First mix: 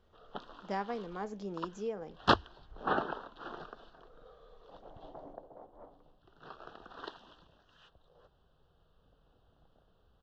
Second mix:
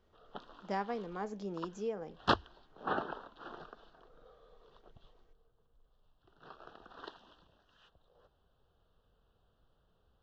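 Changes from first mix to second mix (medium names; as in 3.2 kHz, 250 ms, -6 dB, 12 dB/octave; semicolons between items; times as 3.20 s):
first sound -3.5 dB; second sound: muted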